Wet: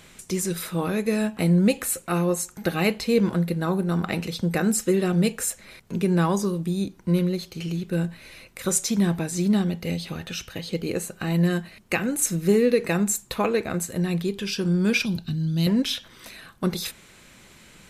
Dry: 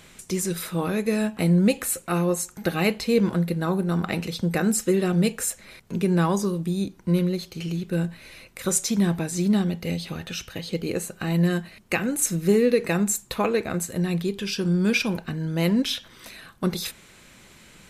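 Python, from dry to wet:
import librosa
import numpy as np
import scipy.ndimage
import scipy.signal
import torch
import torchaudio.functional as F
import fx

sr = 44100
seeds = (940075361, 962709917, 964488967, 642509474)

y = fx.graphic_eq(x, sr, hz=(125, 500, 1000, 2000, 4000, 8000), db=(7, -12, -10, -12, 10, -4), at=(15.05, 15.67))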